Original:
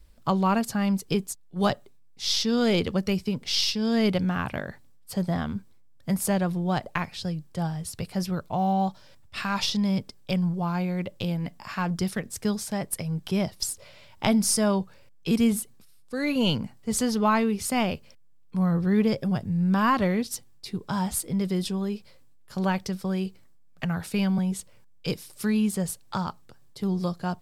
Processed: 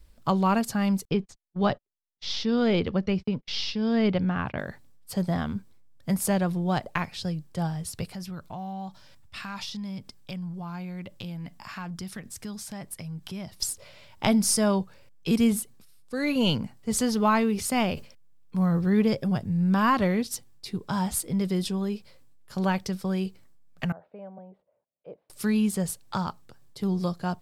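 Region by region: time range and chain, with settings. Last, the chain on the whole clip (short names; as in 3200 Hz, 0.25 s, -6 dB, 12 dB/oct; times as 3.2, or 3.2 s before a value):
1.05–4.59 gate -39 dBFS, range -40 dB + air absorption 190 m
8.13–13.6 bell 470 Hz -6 dB 0.93 oct + compressor 2.5:1, threshold -37 dBFS
17.04–18.9 short-mantissa float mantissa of 6-bit + sustainer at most 140 dB/s
23.92–25.3 band-pass 620 Hz, Q 4.6 + air absorption 440 m
whole clip: dry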